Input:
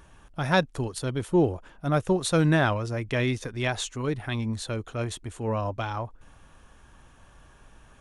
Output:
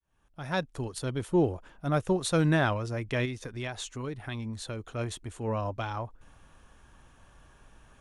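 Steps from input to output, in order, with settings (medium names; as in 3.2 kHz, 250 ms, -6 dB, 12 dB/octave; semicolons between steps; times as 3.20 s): fade-in on the opening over 1.01 s; 3.25–4.95 s: compression 3:1, threshold -31 dBFS, peak gain reduction 7 dB; trim -3 dB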